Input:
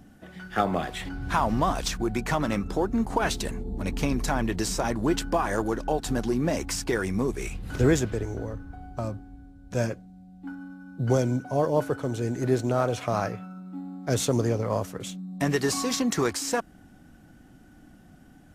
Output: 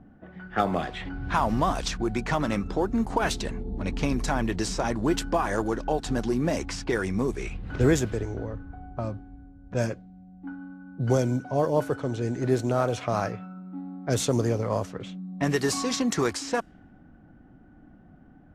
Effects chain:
low-pass that shuts in the quiet parts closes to 1,300 Hz, open at −20.5 dBFS

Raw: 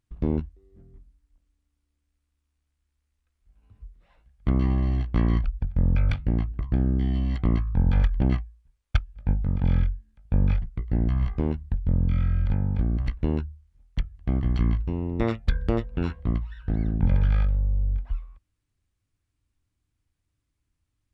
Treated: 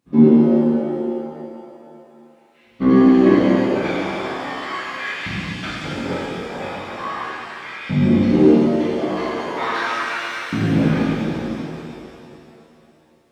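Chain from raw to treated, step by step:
time stretch by phase vocoder 0.63×
auto-filter high-pass saw up 0.38 Hz 200–2,400 Hz
reverb with rising layers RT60 2.7 s, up +7 semitones, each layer −8 dB, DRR −10.5 dB
level +6 dB

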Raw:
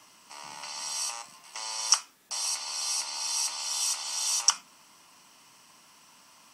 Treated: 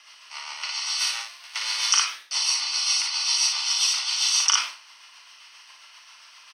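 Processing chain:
0:00.98–0:01.87: spectral envelope flattened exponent 0.6
high-pass filter 1,500 Hz 12 dB per octave
rotating-speaker cabinet horn 7.5 Hz
Savitzky-Golay smoothing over 15 samples
ambience of single reflections 37 ms −8 dB, 57 ms −4.5 dB
boost into a limiter +17.5 dB
level that may fall only so fast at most 130 dB per second
level −4.5 dB

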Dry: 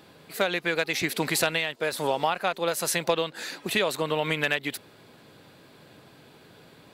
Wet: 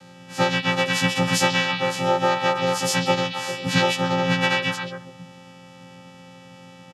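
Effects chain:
every partial snapped to a pitch grid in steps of 6 semitones
channel vocoder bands 8, square 176 Hz
pitch-shifted copies added −7 semitones −10 dB, −5 semitones −16 dB, +7 semitones −7 dB
on a send: echo through a band-pass that steps 133 ms, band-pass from 3,100 Hz, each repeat −1.4 octaves, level −2 dB
on the sum: level −1.5 dB

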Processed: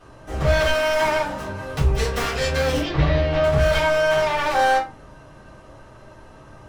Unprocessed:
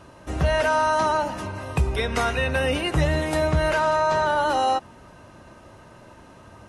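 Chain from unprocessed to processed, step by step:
phase distortion by the signal itself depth 0.32 ms
0:02.80–0:03.44: low-pass filter 4,500 Hz 24 dB per octave
rectangular room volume 120 cubic metres, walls furnished, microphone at 3.7 metres
level −7.5 dB

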